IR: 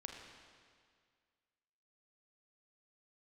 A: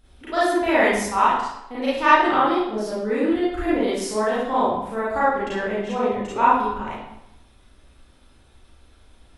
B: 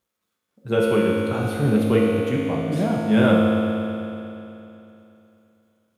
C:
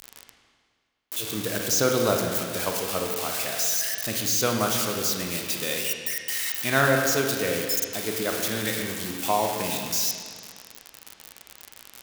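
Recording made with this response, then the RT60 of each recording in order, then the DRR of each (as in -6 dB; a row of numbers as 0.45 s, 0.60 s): C; 0.85 s, 3.0 s, 2.0 s; -10.5 dB, -4.0 dB, 1.5 dB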